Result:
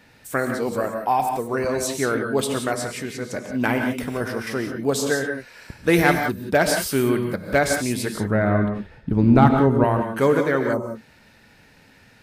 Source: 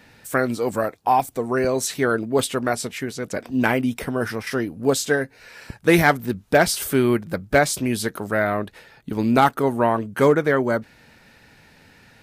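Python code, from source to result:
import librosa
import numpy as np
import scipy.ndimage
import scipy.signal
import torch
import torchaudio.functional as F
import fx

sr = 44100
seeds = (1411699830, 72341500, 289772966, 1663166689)

y = fx.riaa(x, sr, side='playback', at=(8.15, 9.84))
y = fx.rev_gated(y, sr, seeds[0], gate_ms=200, shape='rising', drr_db=4.5)
y = fx.spec_box(y, sr, start_s=10.73, length_s=0.22, low_hz=1300.0, high_hz=5100.0, gain_db=-16)
y = y * librosa.db_to_amplitude(-2.5)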